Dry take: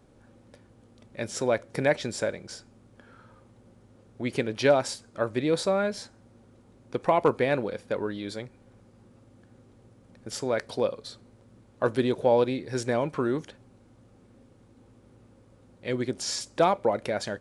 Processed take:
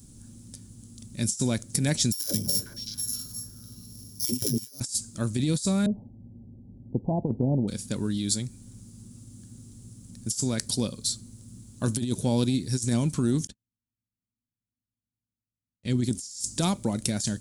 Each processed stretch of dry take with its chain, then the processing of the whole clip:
2.12–4.80 s: sorted samples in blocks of 8 samples + phase dispersion lows, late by 146 ms, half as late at 370 Hz + repeats whose band climbs or falls 214 ms, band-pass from 500 Hz, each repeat 1.4 oct, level -3 dB
5.86–7.68 s: sorted samples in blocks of 16 samples + steep low-pass 880 Hz 72 dB/octave + peaking EQ 630 Hz +4.5 dB 1.1 oct
13.47–16.04 s: treble shelf 5.9 kHz -11.5 dB + gate -48 dBFS, range -46 dB
whole clip: FFT filter 130 Hz 0 dB, 230 Hz -1 dB, 510 Hz -22 dB, 2.1 kHz -16 dB, 7.4 kHz +13 dB; compressor with a negative ratio -33 dBFS, ratio -0.5; trim +7.5 dB

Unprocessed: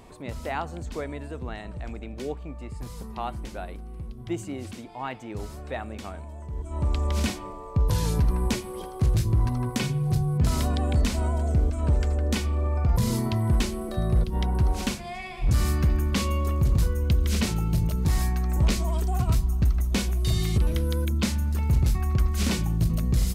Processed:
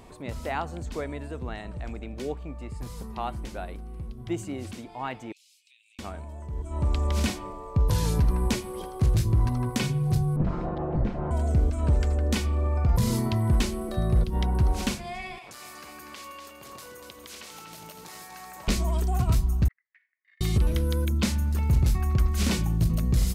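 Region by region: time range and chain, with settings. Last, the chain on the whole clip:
5.32–5.99 s: steep high-pass 2.4 kHz 72 dB/octave + treble shelf 9.7 kHz -11.5 dB + compression 5:1, threshold -57 dBFS
10.36–11.31 s: comb filter that takes the minimum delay 5.7 ms + low-pass 1.2 kHz
15.38–18.68 s: high-pass 640 Hz + compression, threshold -41 dBFS + two-band feedback delay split 490 Hz, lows 162 ms, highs 242 ms, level -6 dB
19.68–20.41 s: gate -21 dBFS, range -20 dB + Butterworth band-pass 1.9 kHz, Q 5 + compression, threshold -55 dBFS
whole clip: none

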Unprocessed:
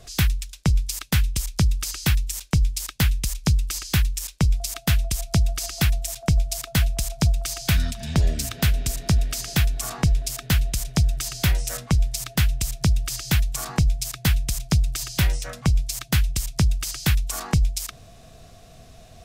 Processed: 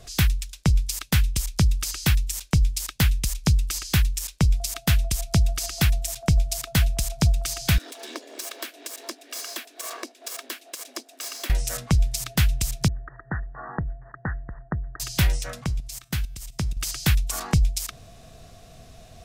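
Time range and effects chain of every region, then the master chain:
7.78–11.50 s: comb filter that takes the minimum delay 1.8 ms + compression 4:1, threshold -27 dBFS + brick-wall FIR high-pass 240 Hz
12.88–15.00 s: Chebyshev low-pass 1.9 kHz, order 10 + bass shelf 220 Hz -11 dB
15.64–16.77 s: feedback comb 120 Hz, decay 0.51 s, mix 40% + level held to a coarse grid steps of 12 dB
whole clip: none

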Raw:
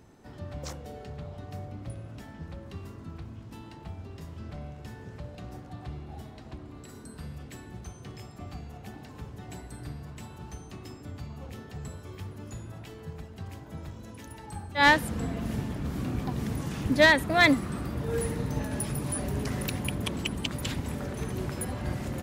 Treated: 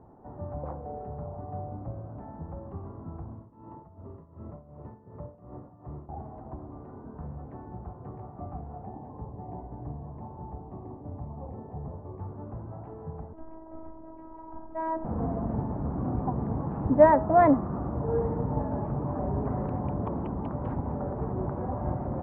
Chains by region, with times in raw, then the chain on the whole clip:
3.35–6.09 s: CVSD coder 32 kbps + tremolo 2.7 Hz, depth 81% + comb of notches 770 Hz
8.85–12.20 s: low-pass 2.1 kHz + peaking EQ 1.4 kHz -11.5 dB 0.38 oct
13.33–15.05 s: compression 4:1, threshold -27 dBFS + robot voice 321 Hz
whole clip: low-pass 1.1 kHz 24 dB/octave; peaking EQ 810 Hz +7.5 dB 1.1 oct; de-hum 212.2 Hz, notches 8; trim +1 dB

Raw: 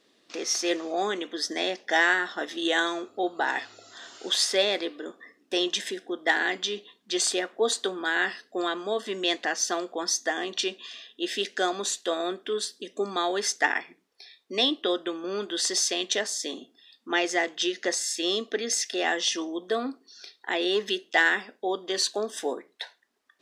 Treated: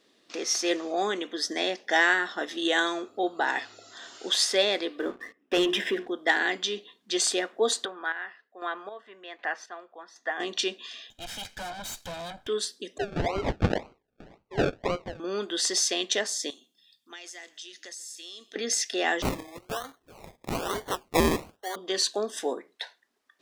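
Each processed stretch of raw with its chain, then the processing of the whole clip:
4.99–6.08 s: Savitzky-Golay filter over 25 samples + hum notches 60/120/180/240/300/360/420 Hz + waveshaping leveller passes 2
7.85–10.40 s: square tremolo 1.3 Hz, depth 65%, duty 35% + three-band isolator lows -14 dB, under 600 Hz, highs -24 dB, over 2.5 kHz
11.10–12.47 s: comb filter that takes the minimum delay 1.3 ms + valve stage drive 34 dB, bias 0.25
12.98–15.20 s: steep high-pass 390 Hz 72 dB/octave + decimation with a swept rate 35×, swing 60% 1.9 Hz + distance through air 160 m
16.50–18.56 s: pre-emphasis filter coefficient 0.9 + compression 5:1, threshold -39 dBFS + frequency-shifting echo 136 ms, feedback 41%, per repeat -42 Hz, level -22.5 dB
19.22–21.76 s: high-pass 790 Hz + treble shelf 11 kHz -4.5 dB + decimation with a swept rate 24×, swing 60% 1.1 Hz
whole clip: none

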